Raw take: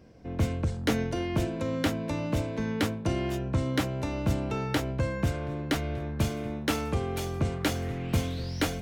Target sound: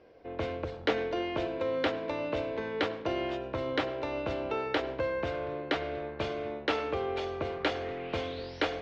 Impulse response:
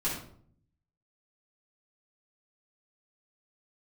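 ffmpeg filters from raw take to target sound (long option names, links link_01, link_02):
-filter_complex "[0:a]lowpass=frequency=4100:width=0.5412,lowpass=frequency=4100:width=1.3066,lowshelf=frequency=290:width_type=q:width=1.5:gain=-13,asplit=2[link_01][link_02];[1:a]atrim=start_sample=2205,adelay=89[link_03];[link_02][link_03]afir=irnorm=-1:irlink=0,volume=-22dB[link_04];[link_01][link_04]amix=inputs=2:normalize=0"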